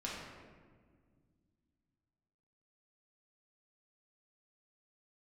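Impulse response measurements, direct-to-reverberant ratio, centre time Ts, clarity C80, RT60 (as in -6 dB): -6.0 dB, 89 ms, 2.0 dB, 1.7 s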